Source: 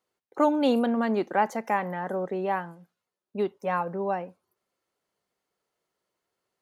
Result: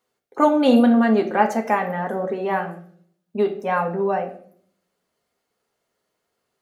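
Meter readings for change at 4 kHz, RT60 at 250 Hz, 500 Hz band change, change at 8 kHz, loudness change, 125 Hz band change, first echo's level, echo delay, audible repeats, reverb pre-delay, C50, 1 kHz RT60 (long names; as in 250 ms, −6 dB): +6.0 dB, 0.85 s, +6.5 dB, can't be measured, +7.0 dB, +6.5 dB, no echo audible, no echo audible, no echo audible, 4 ms, 10.5 dB, 0.50 s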